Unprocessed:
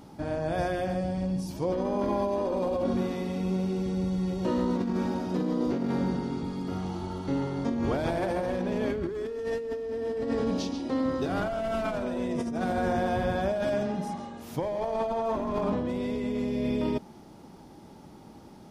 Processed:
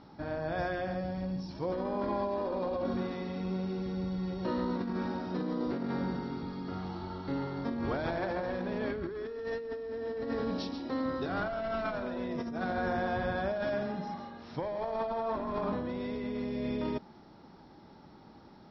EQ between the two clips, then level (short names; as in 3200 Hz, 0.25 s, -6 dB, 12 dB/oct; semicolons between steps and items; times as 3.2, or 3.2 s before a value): rippled Chebyshev low-pass 5600 Hz, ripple 6 dB; 0.0 dB